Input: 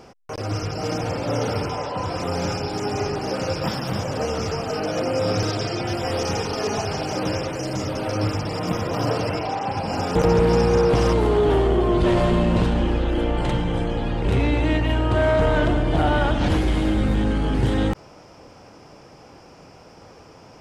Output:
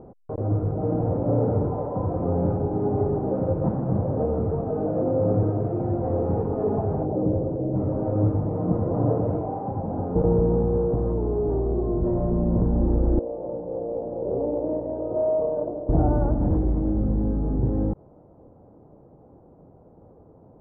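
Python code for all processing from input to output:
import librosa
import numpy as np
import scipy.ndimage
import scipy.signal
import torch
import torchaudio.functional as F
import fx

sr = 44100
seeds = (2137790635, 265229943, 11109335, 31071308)

y = fx.chain(x, sr, fx.envelope_sharpen(power=1.5),
    fx.lowpass(hz=1000.0, slope=6), at=(7.05, 7.76))
y = fx.chain(y, sr, fx.bandpass_q(hz=550.0, q=4.0),
    fx.doppler_dist(depth_ms=0.17), at=(13.19, 15.89))
y = scipy.signal.sosfilt(scipy.signal.bessel(4, 530.0, 'lowpass', norm='mag', fs=sr, output='sos'), y)
y = fx.rider(y, sr, range_db=10, speed_s=2.0)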